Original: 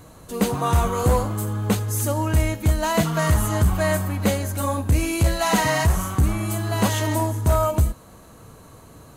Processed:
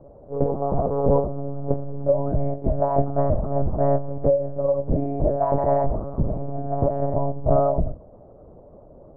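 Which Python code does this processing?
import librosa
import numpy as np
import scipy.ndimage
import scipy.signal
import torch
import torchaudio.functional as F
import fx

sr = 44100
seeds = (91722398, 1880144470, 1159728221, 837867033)

y = fx.ladder_lowpass(x, sr, hz=660.0, resonance_pct=65)
y = fx.hum_notches(y, sr, base_hz=60, count=6)
y = fx.lpc_monotone(y, sr, seeds[0], pitch_hz=140.0, order=8)
y = y * 10.0 ** (8.0 / 20.0)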